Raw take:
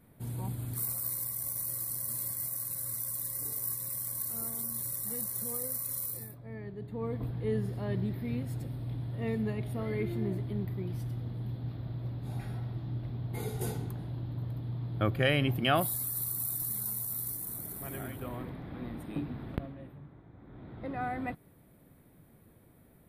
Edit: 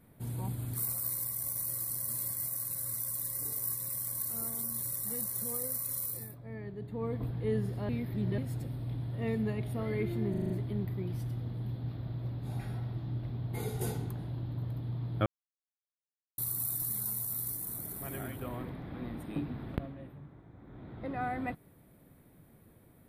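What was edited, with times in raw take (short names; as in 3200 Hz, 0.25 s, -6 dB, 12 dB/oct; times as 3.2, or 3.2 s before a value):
7.89–8.38 reverse
10.3 stutter 0.04 s, 6 plays
15.06–16.18 mute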